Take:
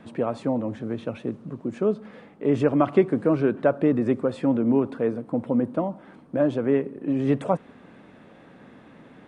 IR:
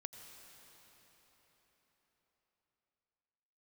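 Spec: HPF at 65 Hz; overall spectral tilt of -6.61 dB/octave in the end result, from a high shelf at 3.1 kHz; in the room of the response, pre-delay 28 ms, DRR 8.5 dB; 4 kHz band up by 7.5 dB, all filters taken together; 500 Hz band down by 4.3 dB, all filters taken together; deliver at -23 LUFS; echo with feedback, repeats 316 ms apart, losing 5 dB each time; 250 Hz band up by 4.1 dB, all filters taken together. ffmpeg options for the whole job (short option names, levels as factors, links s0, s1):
-filter_complex "[0:a]highpass=65,equalizer=f=250:t=o:g=7,equalizer=f=500:t=o:g=-8.5,highshelf=f=3100:g=6.5,equalizer=f=4000:t=o:g=5,aecho=1:1:316|632|948|1264|1580|1896|2212:0.562|0.315|0.176|0.0988|0.0553|0.031|0.0173,asplit=2[s0][s1];[1:a]atrim=start_sample=2205,adelay=28[s2];[s1][s2]afir=irnorm=-1:irlink=0,volume=0.596[s3];[s0][s3]amix=inputs=2:normalize=0,volume=0.841"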